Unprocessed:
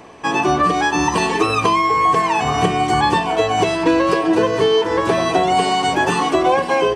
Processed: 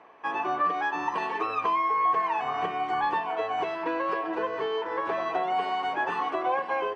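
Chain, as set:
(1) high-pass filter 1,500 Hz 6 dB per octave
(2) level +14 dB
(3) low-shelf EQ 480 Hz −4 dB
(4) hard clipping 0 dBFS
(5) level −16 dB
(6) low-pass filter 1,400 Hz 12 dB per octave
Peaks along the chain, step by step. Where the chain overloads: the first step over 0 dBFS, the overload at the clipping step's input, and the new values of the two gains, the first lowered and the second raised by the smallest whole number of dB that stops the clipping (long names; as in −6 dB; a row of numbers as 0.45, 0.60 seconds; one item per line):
−9.5, +4.5, +4.0, 0.0, −16.0, −16.5 dBFS
step 2, 4.0 dB
step 2 +10 dB, step 5 −12 dB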